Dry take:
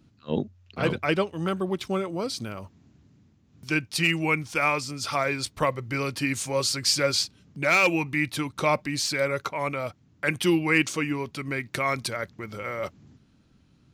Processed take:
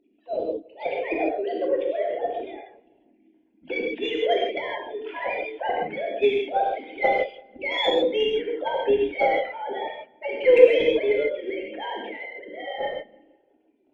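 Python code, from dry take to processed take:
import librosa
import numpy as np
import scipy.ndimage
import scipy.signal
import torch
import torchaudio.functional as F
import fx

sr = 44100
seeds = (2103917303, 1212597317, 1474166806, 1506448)

p1 = fx.sine_speech(x, sr)
p2 = fx.pitch_keep_formants(p1, sr, semitones=6.5)
p3 = fx.fixed_phaser(p2, sr, hz=2900.0, stages=4)
p4 = fx.cheby_harmonics(p3, sr, harmonics=(6, 8), levels_db=(-31, -43), full_scale_db=-9.5)
p5 = fx.peak_eq(p4, sr, hz=560.0, db=10.0, octaves=1.8)
p6 = p5 + fx.echo_filtered(p5, sr, ms=169, feedback_pct=45, hz=2800.0, wet_db=-23, dry=0)
p7 = fx.rev_gated(p6, sr, seeds[0], gate_ms=180, shape='flat', drr_db=-2.0)
y = p7 * librosa.db_to_amplitude(-4.5)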